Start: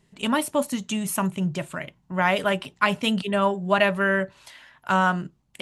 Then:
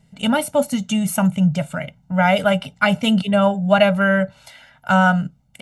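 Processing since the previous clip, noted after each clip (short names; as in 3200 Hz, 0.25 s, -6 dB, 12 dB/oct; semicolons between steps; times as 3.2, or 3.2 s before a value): bell 200 Hz +6.5 dB 2.7 oct; comb 1.4 ms, depth 97%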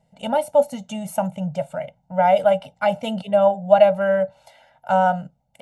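band shelf 670 Hz +13 dB 1.1 oct; gain -10.5 dB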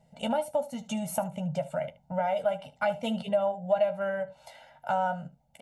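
compressor 2.5:1, threshold -30 dBFS, peak gain reduction 15 dB; early reflections 13 ms -8 dB, 76 ms -17.5 dB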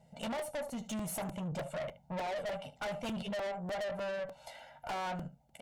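tube stage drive 36 dB, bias 0.3; crackling interface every 0.30 s, samples 128, repeat, from 0.39; gain +1 dB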